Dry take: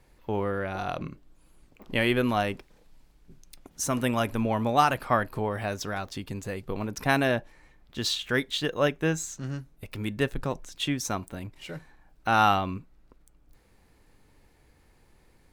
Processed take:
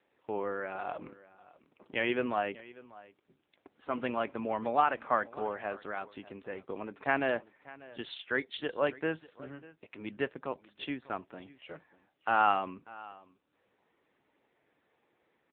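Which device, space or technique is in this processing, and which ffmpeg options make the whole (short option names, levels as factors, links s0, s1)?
satellite phone: -af "highpass=310,lowpass=3100,aecho=1:1:592:0.1,volume=0.668" -ar 8000 -c:a libopencore_amrnb -b:a 6700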